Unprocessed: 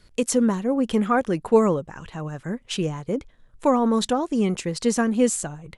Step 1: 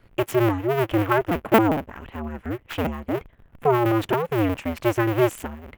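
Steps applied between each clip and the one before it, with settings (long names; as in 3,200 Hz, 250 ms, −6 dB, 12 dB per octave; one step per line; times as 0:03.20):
sub-harmonics by changed cycles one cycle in 2, inverted
flat-topped bell 6,200 Hz −15 dB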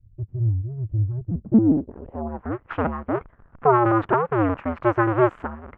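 low-pass filter sweep 100 Hz → 1,300 Hz, 0:01.12–0:02.58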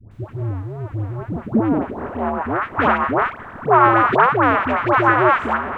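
compressor on every frequency bin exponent 0.6
tilt shelving filter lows −9 dB, about 910 Hz
all-pass dispersion highs, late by 115 ms, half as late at 840 Hz
level +4.5 dB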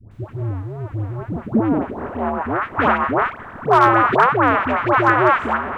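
gain into a clipping stage and back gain 5 dB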